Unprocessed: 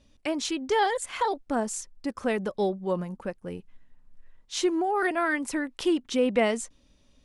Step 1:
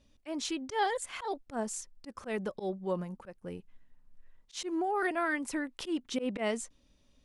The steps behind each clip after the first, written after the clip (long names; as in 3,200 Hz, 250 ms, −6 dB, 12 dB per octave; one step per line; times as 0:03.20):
volume swells 101 ms
level −5 dB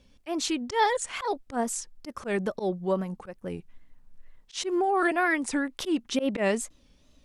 tape wow and flutter 130 cents
level +6.5 dB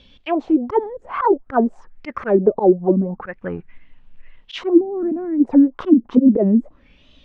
envelope-controlled low-pass 240–3,600 Hz down, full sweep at −22 dBFS
level +7.5 dB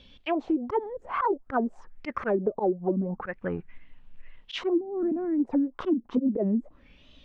downward compressor 4 to 1, threshold −20 dBFS, peak gain reduction 12 dB
level −3.5 dB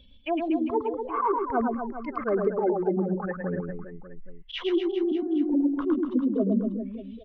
expanding power law on the bin magnitudes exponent 1.6
reverse bouncing-ball delay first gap 110 ms, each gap 1.2×, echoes 5